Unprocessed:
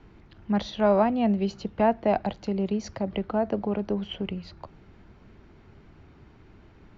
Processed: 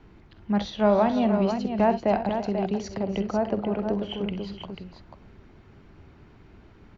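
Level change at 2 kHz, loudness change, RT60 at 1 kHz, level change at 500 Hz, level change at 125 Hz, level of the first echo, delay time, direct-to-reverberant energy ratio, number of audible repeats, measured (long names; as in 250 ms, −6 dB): +1.0 dB, +1.0 dB, no reverb audible, +1.0 dB, +1.5 dB, −14.5 dB, 48 ms, no reverb audible, 4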